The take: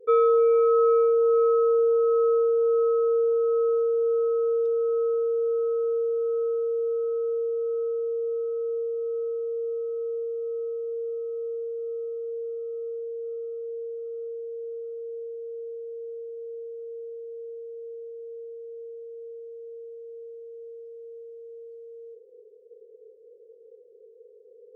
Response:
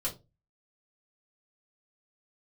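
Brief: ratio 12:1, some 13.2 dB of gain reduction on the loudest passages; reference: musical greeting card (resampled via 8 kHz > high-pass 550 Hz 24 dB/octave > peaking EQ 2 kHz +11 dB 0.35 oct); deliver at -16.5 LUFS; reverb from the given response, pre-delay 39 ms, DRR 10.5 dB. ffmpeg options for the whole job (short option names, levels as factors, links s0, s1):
-filter_complex "[0:a]acompressor=threshold=0.0282:ratio=12,asplit=2[s0][s1];[1:a]atrim=start_sample=2205,adelay=39[s2];[s1][s2]afir=irnorm=-1:irlink=0,volume=0.2[s3];[s0][s3]amix=inputs=2:normalize=0,aresample=8000,aresample=44100,highpass=f=550:w=0.5412,highpass=f=550:w=1.3066,equalizer=f=2000:t=o:w=0.35:g=11,volume=14.1"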